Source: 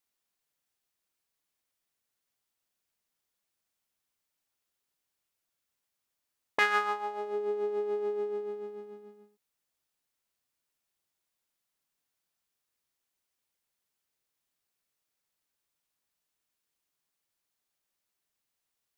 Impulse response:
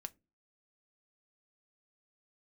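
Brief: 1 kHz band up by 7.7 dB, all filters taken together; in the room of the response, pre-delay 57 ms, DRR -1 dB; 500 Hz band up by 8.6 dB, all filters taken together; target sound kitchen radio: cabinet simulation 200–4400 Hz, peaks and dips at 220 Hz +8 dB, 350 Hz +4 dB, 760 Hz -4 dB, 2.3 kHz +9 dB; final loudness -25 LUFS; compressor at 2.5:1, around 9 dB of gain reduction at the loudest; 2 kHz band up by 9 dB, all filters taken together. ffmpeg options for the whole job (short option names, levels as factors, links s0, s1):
-filter_complex "[0:a]equalizer=f=500:t=o:g=8,equalizer=f=1000:t=o:g=8,equalizer=f=2000:t=o:g=4.5,acompressor=threshold=0.0447:ratio=2.5,asplit=2[s0][s1];[1:a]atrim=start_sample=2205,adelay=57[s2];[s1][s2]afir=irnorm=-1:irlink=0,volume=1.88[s3];[s0][s3]amix=inputs=2:normalize=0,highpass=200,equalizer=f=220:t=q:w=4:g=8,equalizer=f=350:t=q:w=4:g=4,equalizer=f=760:t=q:w=4:g=-4,equalizer=f=2300:t=q:w=4:g=9,lowpass=f=4400:w=0.5412,lowpass=f=4400:w=1.3066,volume=1.33"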